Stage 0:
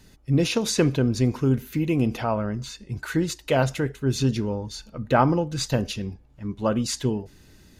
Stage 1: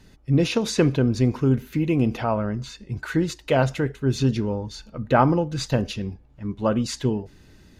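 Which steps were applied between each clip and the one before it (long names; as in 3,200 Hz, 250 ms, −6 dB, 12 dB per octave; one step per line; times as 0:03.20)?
high-shelf EQ 6,300 Hz −10 dB
level +1.5 dB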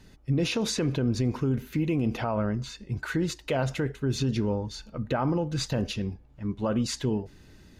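brickwall limiter −16.5 dBFS, peak gain reduction 11 dB
level −1.5 dB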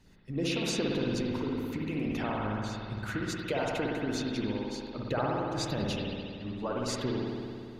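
harmonic and percussive parts rebalanced harmonic −12 dB
spring reverb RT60 2.4 s, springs 57 ms, chirp 45 ms, DRR −3 dB
level −3.5 dB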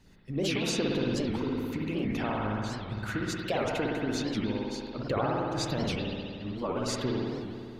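wow of a warped record 78 rpm, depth 250 cents
level +1.5 dB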